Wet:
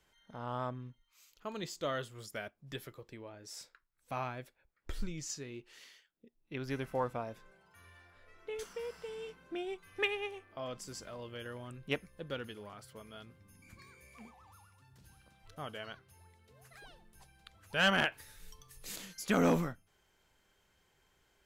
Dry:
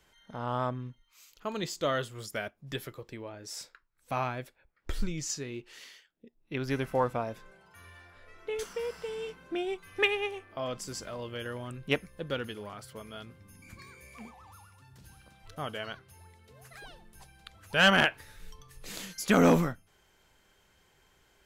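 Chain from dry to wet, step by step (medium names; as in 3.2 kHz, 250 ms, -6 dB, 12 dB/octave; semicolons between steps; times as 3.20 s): 18.12–18.96 s: treble shelf 4.5 kHz +10 dB; trim -6.5 dB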